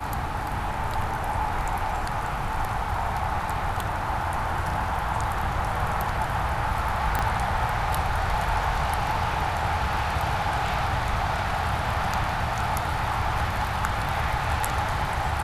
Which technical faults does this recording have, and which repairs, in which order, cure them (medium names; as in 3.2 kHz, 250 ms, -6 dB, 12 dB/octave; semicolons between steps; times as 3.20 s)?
7.19 s: pop -12 dBFS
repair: de-click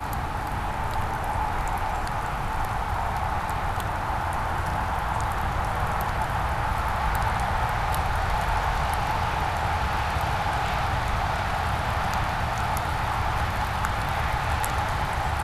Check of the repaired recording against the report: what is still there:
7.19 s: pop